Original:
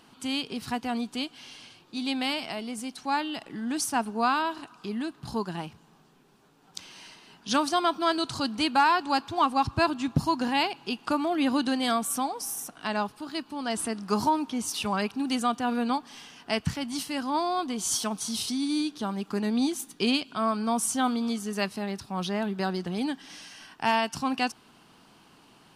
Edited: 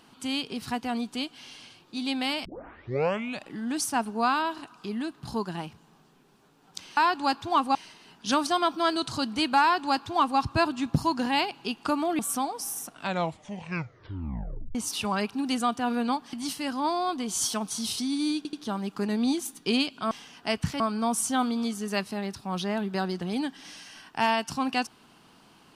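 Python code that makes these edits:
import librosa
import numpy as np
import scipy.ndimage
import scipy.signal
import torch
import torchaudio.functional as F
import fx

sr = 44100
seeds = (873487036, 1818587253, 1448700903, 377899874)

y = fx.edit(x, sr, fx.tape_start(start_s=2.45, length_s=1.03),
    fx.duplicate(start_s=8.83, length_s=0.78, to_s=6.97),
    fx.cut(start_s=11.41, length_s=0.59),
    fx.tape_stop(start_s=12.71, length_s=1.85),
    fx.move(start_s=16.14, length_s=0.69, to_s=20.45),
    fx.stutter(start_s=18.87, slice_s=0.08, count=3), tone=tone)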